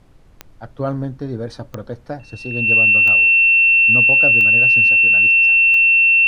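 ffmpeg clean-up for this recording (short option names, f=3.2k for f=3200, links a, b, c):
-af "adeclick=t=4,bandreject=f=2.7k:w=30,agate=range=-21dB:threshold=-36dB"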